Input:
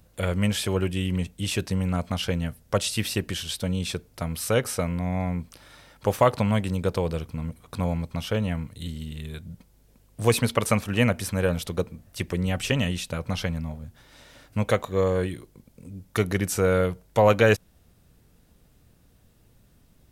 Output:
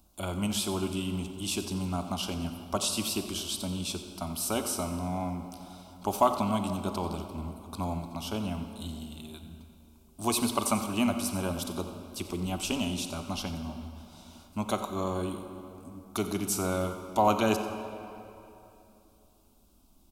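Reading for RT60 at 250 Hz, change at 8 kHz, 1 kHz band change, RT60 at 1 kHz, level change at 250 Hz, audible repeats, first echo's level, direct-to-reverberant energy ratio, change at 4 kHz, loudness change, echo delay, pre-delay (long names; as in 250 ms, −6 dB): 3.2 s, 0.0 dB, −0.5 dB, 2.9 s, −3.5 dB, 1, −14.0 dB, 6.5 dB, −3.0 dB, −5.5 dB, 90 ms, 30 ms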